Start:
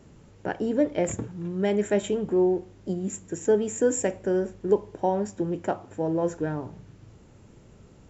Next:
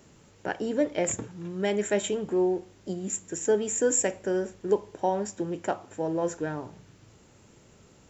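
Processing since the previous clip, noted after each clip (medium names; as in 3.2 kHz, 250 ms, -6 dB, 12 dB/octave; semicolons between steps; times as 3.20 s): tilt EQ +2 dB/octave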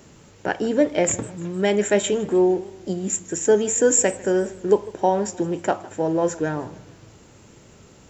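modulated delay 153 ms, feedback 52%, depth 149 cents, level -21 dB; trim +7 dB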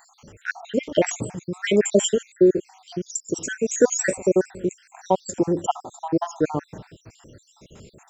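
random holes in the spectrogram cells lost 66%; trim +4 dB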